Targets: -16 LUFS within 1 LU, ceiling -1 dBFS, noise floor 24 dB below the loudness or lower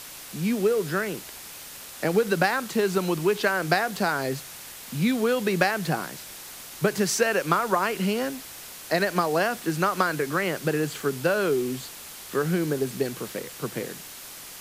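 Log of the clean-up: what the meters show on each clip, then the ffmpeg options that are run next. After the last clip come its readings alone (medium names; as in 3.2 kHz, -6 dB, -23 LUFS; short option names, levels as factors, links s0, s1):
noise floor -42 dBFS; noise floor target -50 dBFS; loudness -25.5 LUFS; peak level -7.0 dBFS; loudness target -16.0 LUFS
-> -af "afftdn=nr=8:nf=-42"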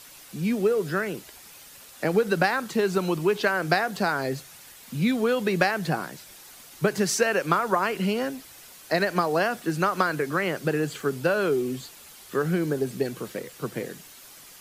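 noise floor -48 dBFS; noise floor target -50 dBFS
-> -af "afftdn=nr=6:nf=-48"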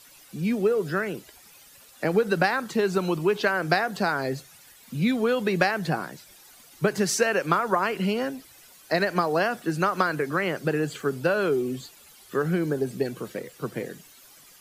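noise floor -52 dBFS; loudness -25.5 LUFS; peak level -7.0 dBFS; loudness target -16.0 LUFS
-> -af "volume=2.99,alimiter=limit=0.891:level=0:latency=1"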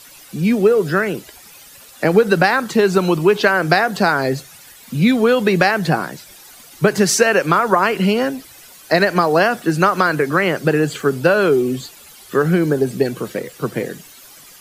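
loudness -16.5 LUFS; peak level -1.0 dBFS; noise floor -43 dBFS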